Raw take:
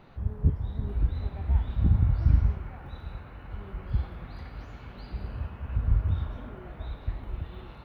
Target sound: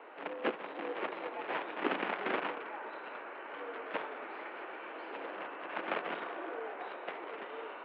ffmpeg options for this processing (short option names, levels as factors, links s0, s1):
-af "acrusher=bits=4:mode=log:mix=0:aa=0.000001,highpass=f=290:t=q:w=0.5412,highpass=f=290:t=q:w=1.307,lowpass=f=2800:t=q:w=0.5176,lowpass=f=2800:t=q:w=0.7071,lowpass=f=2800:t=q:w=1.932,afreqshift=84,volume=2"